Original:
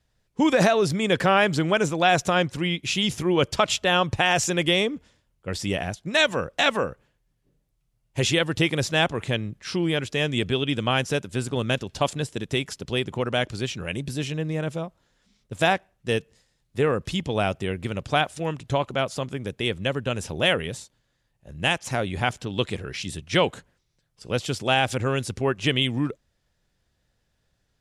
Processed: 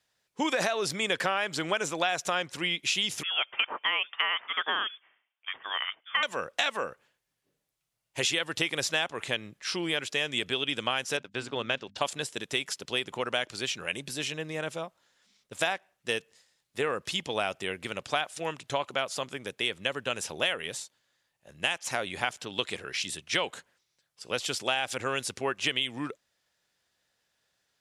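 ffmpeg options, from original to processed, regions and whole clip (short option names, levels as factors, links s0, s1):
-filter_complex "[0:a]asettb=1/sr,asplit=3[s0][s1][s2];[s0]atrim=end=3.234[s3];[s1]atrim=start=3.23:end=6.23,asetpts=PTS-STARTPTS,afade=t=in:d=0.004:c=qsin,afade=t=out:st=2.996:d=0.004:c=qsin,highpass=760,lowpass=f=3100:t=q:w=0.5098,lowpass=f=3100:t=q:w=0.6013,lowpass=f=3100:t=q:w=0.9,lowpass=f=3100:t=q:w=2.563,afreqshift=-3700[s4];[s2]atrim=start=6.226[s5];[s3][s4]acrossfade=d=0.004:c1=hsin:c2=qsin[s6];[s6][s5]acrossfade=d=0.004:c1=qsin:c2=hsin,asettb=1/sr,asplit=3[s7][s8][s9];[s7]atrim=end=11.174[s10];[s8]atrim=start=11.17:end=11.98,asetpts=PTS-STARTPTS,afade=t=in:d=0.004:c=qsin,afade=t=out:st=0.806:d=0.004:c=qsin,agate=range=0.02:threshold=0.0126:ratio=16:release=100:detection=peak,lowpass=4100,bandreject=f=50:t=h:w=6,bandreject=f=100:t=h:w=6,bandreject=f=150:t=h:w=6,bandreject=f=200:t=h:w=6,bandreject=f=250:t=h:w=6[s11];[s9]atrim=start=11.976[s12];[s10][s11]acrossfade=d=0.004:c1=hsin:c2=qsin[s13];[s13][s12]acrossfade=d=0.004:c1=qsin:c2=hsin,highpass=f=980:p=1,acompressor=threshold=0.0501:ratio=6,volume=1.26"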